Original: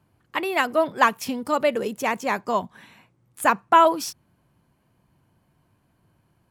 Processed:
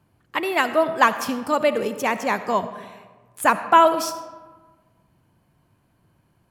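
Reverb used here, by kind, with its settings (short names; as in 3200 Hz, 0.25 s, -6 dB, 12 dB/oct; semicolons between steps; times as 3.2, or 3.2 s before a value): digital reverb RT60 1.4 s, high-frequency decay 0.55×, pre-delay 30 ms, DRR 11.5 dB; gain +1.5 dB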